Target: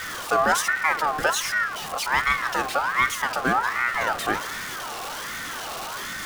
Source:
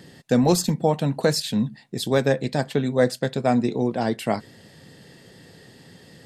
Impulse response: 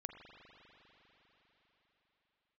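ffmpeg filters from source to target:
-filter_complex "[0:a]aeval=exprs='val(0)+0.5*0.0668*sgn(val(0))':c=same,asplit=2[s0][s1];[1:a]atrim=start_sample=2205,afade=t=out:st=0.43:d=0.01,atrim=end_sample=19404[s2];[s1][s2]afir=irnorm=-1:irlink=0,volume=1.26[s3];[s0][s3]amix=inputs=2:normalize=0,aeval=exprs='val(0)*sin(2*PI*1300*n/s+1300*0.3/1.3*sin(2*PI*1.3*n/s))':c=same,volume=0.501"

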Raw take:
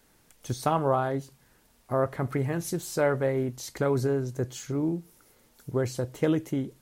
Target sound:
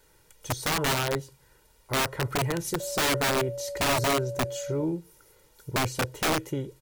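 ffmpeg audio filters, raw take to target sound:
-filter_complex "[0:a]aecho=1:1:2.1:0.67,aeval=exprs='(mod(10*val(0)+1,2)-1)/10':c=same,asettb=1/sr,asplit=3[s0][s1][s2];[s0]atrim=end=2.804[s3];[s1]atrim=start=2.8:end=4.84,asetpts=PTS-STARTPTS,afade=t=in:d=0.004:c=qsin,afade=t=out:st=2.036:d=0.004:c=qsin,aeval=exprs='val(0)+0.0224*sin(2*PI*570*n/s)':c=same[s4];[s2]atrim=start=4.836[s5];[s3][s4]acrossfade=d=0.004:c1=hsin:c2=qsin[s6];[s6][s5]acrossfade=d=0.004:c1=qsin:c2=hsin"

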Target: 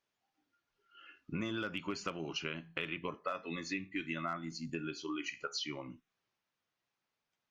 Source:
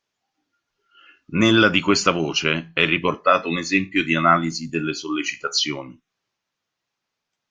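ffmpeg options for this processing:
-af "bass=f=250:g=0,treble=f=4000:g=-5,asoftclip=type=hard:threshold=0.596,acompressor=threshold=0.0282:ratio=5,volume=0.501"

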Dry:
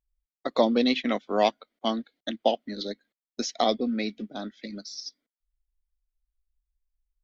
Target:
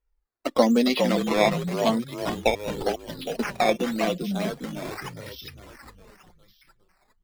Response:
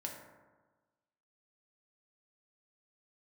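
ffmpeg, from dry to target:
-filter_complex "[0:a]asplit=2[s0][s1];[s1]asplit=6[s2][s3][s4][s5][s6][s7];[s2]adelay=407,afreqshift=-38,volume=0.531[s8];[s3]adelay=814,afreqshift=-76,volume=0.266[s9];[s4]adelay=1221,afreqshift=-114,volume=0.133[s10];[s5]adelay=1628,afreqshift=-152,volume=0.0661[s11];[s6]adelay=2035,afreqshift=-190,volume=0.0331[s12];[s7]adelay=2442,afreqshift=-228,volume=0.0166[s13];[s8][s9][s10][s11][s12][s13]amix=inputs=6:normalize=0[s14];[s0][s14]amix=inputs=2:normalize=0,acrusher=samples=10:mix=1:aa=0.000001:lfo=1:lforange=10:lforate=0.88,flanger=delay=2.1:depth=3.9:regen=37:speed=0.38:shape=sinusoidal,acrossover=split=5600[s15][s16];[s16]acompressor=threshold=0.00447:ratio=4:attack=1:release=60[s17];[s15][s17]amix=inputs=2:normalize=0,volume=2"

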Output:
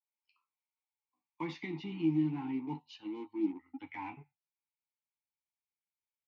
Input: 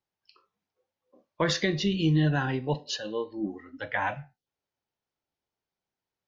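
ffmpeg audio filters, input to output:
-filter_complex "[0:a]asubboost=boost=10.5:cutoff=200,asplit=2[s0][s1];[s1]highpass=f=720:p=1,volume=7.08,asoftclip=type=tanh:threshold=0.531[s2];[s0][s2]amix=inputs=2:normalize=0,lowpass=f=5600:p=1,volume=0.501,acrossover=split=130|820|2000[s3][s4][s5][s6];[s4]acrusher=bits=4:mix=0:aa=0.5[s7];[s3][s7][s5][s6]amix=inputs=4:normalize=0,asplit=3[s8][s9][s10];[s8]bandpass=f=300:t=q:w=8,volume=1[s11];[s9]bandpass=f=870:t=q:w=8,volume=0.501[s12];[s10]bandpass=f=2240:t=q:w=8,volume=0.355[s13];[s11][s12][s13]amix=inputs=3:normalize=0,asplit=2[s14][s15];[s15]adelay=12,volume=0.447[s16];[s14][s16]amix=inputs=2:normalize=0,adynamicequalizer=threshold=0.00447:dfrequency=1900:dqfactor=0.7:tfrequency=1900:tqfactor=0.7:attack=5:release=100:ratio=0.375:range=2:mode=cutabove:tftype=highshelf,volume=0.473"

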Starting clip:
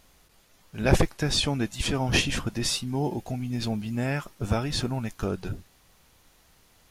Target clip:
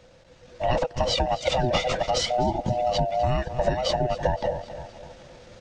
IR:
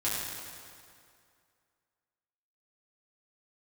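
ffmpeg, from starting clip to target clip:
-filter_complex "[0:a]afftfilt=real='real(if(lt(b,1008),b+24*(1-2*mod(floor(b/24),2)),b),0)':imag='imag(if(lt(b,1008),b+24*(1-2*mod(floor(b/24),2)),b),0)':win_size=2048:overlap=0.75,asplit=2[s0][s1];[s1]asoftclip=type=hard:threshold=0.2,volume=0.355[s2];[s0][s2]amix=inputs=2:normalize=0,bass=f=250:g=13,treble=f=4000:g=-3,aecho=1:1:315|630|945|1260:0.126|0.0579|0.0266|0.0123,asetrate=54243,aresample=44100,lowpass=f=8900:w=0.5412,lowpass=f=8900:w=1.3066,equalizer=f=470:w=6.8:g=7.5,acrossover=split=340[s3][s4];[s3]alimiter=limit=0.168:level=0:latency=1:release=154[s5];[s5][s4]amix=inputs=2:normalize=0,acompressor=threshold=0.0398:ratio=10,asetrate=34006,aresample=44100,atempo=1.29684,dynaudnorm=f=150:g=7:m=2.24,volume=1.12"

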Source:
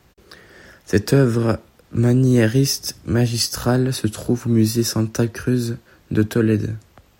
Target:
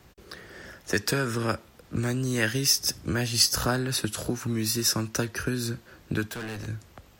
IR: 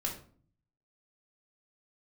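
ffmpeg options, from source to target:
-filter_complex "[0:a]acrossover=split=930[s0][s1];[s0]acompressor=threshold=0.0447:ratio=5[s2];[s2][s1]amix=inputs=2:normalize=0,asettb=1/sr,asplit=3[s3][s4][s5];[s3]atrim=end=6.284[s6];[s4]atrim=start=6.28:end=6.68,asetpts=PTS-STARTPTS,afade=t=in:d=0.004:c=qsin,afade=t=out:st=0.396:d=0.004:c=qsin,asoftclip=type=hard:threshold=0.0211[s7];[s5]atrim=start=6.676[s8];[s6][s7]acrossfade=d=0.004:c1=hsin:c2=qsin[s9];[s9][s8]acrossfade=d=0.004:c1=qsin:c2=hsin"

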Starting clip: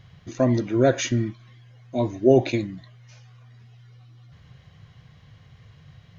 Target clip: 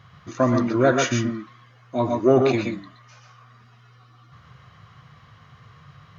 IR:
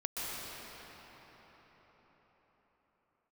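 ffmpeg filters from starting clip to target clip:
-filter_complex "[0:a]highpass=82,asplit=2[s0][s1];[s1]asoftclip=type=tanh:threshold=0.168,volume=0.376[s2];[s0][s2]amix=inputs=2:normalize=0,equalizer=f=1200:t=o:w=0.69:g=14[s3];[1:a]atrim=start_sample=2205,afade=t=out:st=0.19:d=0.01,atrim=end_sample=8820[s4];[s3][s4]afir=irnorm=-1:irlink=0"

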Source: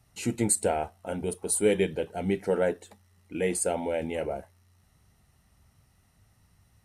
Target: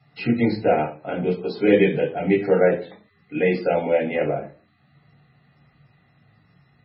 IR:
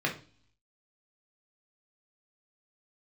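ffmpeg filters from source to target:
-filter_complex "[0:a]highpass=f=110:p=1[s0];[1:a]atrim=start_sample=2205,afade=t=out:st=0.32:d=0.01,atrim=end_sample=14553[s1];[s0][s1]afir=irnorm=-1:irlink=0" -ar 22050 -c:a libmp3lame -b:a 16k

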